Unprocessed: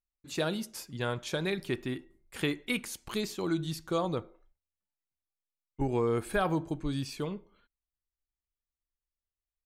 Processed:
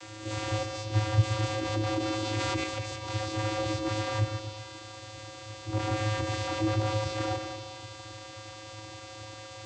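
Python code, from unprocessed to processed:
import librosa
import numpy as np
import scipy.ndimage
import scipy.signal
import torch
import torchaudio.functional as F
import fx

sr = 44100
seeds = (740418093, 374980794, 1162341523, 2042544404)

p1 = fx.spec_swells(x, sr, rise_s=0.35)
p2 = fx.quant_dither(p1, sr, seeds[0], bits=6, dither='triangular')
p3 = p1 + (p2 * librosa.db_to_amplitude(-4.0))
p4 = (np.mod(10.0 ** (27.5 / 20.0) * p3 + 1.0, 2.0) - 1.0) / 10.0 ** (27.5 / 20.0)
p5 = fx.vocoder(p4, sr, bands=16, carrier='square', carrier_hz=107.0)
p6 = p5 + fx.echo_split(p5, sr, split_hz=760.0, low_ms=125, high_ms=194, feedback_pct=52, wet_db=-7.0, dry=0)
p7 = fx.env_flatten(p6, sr, amount_pct=70, at=(1.96, 2.64))
y = p7 * librosa.db_to_amplitude(6.0)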